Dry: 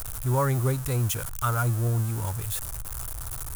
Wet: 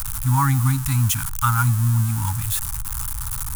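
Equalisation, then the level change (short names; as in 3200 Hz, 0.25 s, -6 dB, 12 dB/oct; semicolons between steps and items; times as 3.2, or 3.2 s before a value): Chebyshev band-stop 280–810 Hz, order 5; +7.5 dB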